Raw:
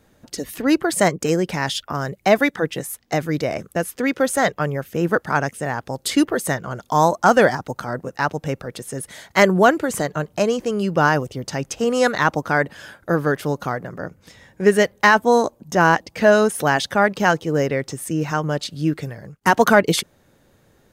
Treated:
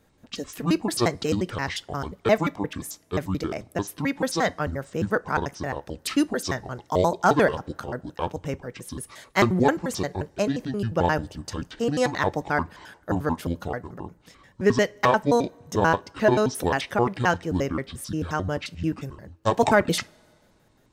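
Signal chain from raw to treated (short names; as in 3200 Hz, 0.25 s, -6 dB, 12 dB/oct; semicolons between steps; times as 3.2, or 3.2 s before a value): trilling pitch shifter -9 st, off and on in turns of 88 ms; two-slope reverb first 0.23 s, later 2 s, from -22 dB, DRR 17 dB; gain -5 dB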